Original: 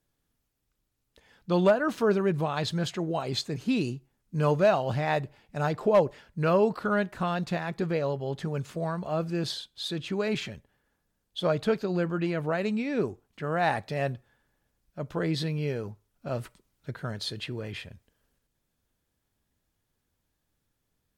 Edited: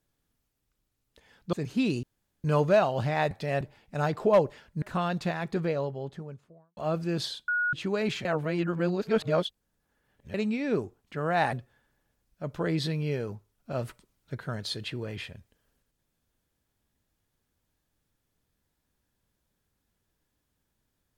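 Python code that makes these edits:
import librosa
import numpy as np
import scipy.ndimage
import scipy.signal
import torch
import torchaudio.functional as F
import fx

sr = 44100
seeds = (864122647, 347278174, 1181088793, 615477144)

y = fx.studio_fade_out(x, sr, start_s=7.75, length_s=1.28)
y = fx.edit(y, sr, fx.cut(start_s=1.53, length_s=1.91),
    fx.room_tone_fill(start_s=3.94, length_s=0.41),
    fx.cut(start_s=6.43, length_s=0.65),
    fx.bleep(start_s=9.74, length_s=0.25, hz=1450.0, db=-24.0),
    fx.reverse_span(start_s=10.51, length_s=2.09),
    fx.move(start_s=13.79, length_s=0.3, to_s=5.22), tone=tone)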